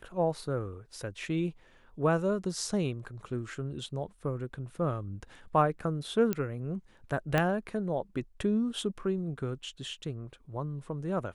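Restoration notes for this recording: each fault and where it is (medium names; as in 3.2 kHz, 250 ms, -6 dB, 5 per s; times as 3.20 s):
6.33 s: pop -16 dBFS
7.38 s: pop -13 dBFS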